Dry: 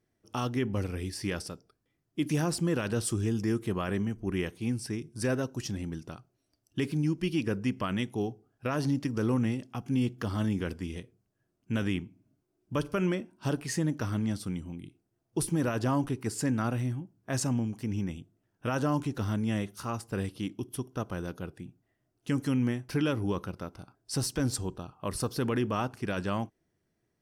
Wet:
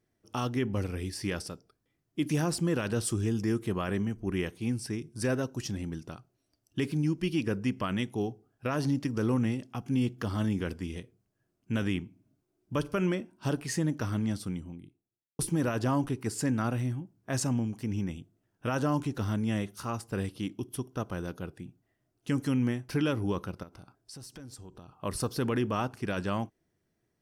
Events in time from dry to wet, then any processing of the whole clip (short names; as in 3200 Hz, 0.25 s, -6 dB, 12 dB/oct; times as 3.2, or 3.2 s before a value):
14.36–15.39 studio fade out
23.63–24.98 compressor 5:1, threshold -45 dBFS